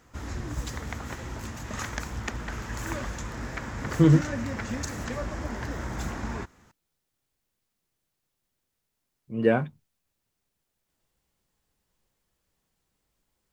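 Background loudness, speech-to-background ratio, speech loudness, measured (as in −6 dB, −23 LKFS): −34.5 LKFS, 11.5 dB, −23.0 LKFS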